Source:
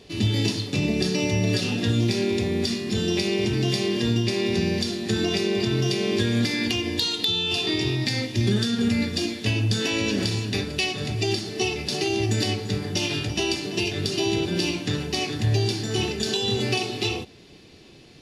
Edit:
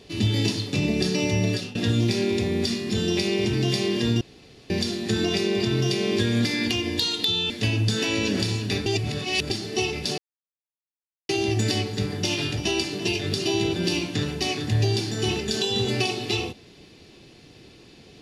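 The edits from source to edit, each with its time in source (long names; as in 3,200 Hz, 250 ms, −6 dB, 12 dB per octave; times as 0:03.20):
0:01.45–0:01.75: fade out, to −19.5 dB
0:04.21–0:04.70: fill with room tone
0:07.50–0:09.33: remove
0:10.69–0:11.33: reverse
0:12.01: splice in silence 1.11 s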